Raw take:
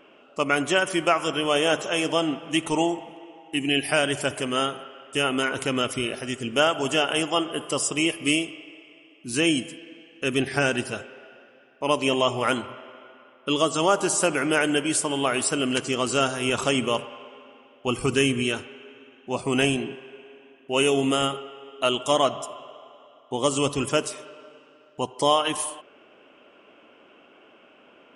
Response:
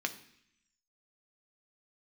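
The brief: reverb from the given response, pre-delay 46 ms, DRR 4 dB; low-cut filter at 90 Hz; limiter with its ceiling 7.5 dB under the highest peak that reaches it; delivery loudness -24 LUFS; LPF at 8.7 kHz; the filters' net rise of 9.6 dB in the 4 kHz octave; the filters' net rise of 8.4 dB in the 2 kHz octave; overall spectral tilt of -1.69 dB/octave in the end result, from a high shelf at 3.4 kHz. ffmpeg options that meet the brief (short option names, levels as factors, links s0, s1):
-filter_complex "[0:a]highpass=90,lowpass=8700,equalizer=f=2000:t=o:g=7,highshelf=f=3400:g=7.5,equalizer=f=4000:t=o:g=5.5,alimiter=limit=0.447:level=0:latency=1,asplit=2[s0][s1];[1:a]atrim=start_sample=2205,adelay=46[s2];[s1][s2]afir=irnorm=-1:irlink=0,volume=0.398[s3];[s0][s3]amix=inputs=2:normalize=0,volume=0.562"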